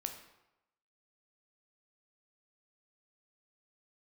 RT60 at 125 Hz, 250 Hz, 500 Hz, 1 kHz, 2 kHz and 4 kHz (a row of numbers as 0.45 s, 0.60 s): 0.85 s, 0.80 s, 0.90 s, 0.95 s, 0.80 s, 0.65 s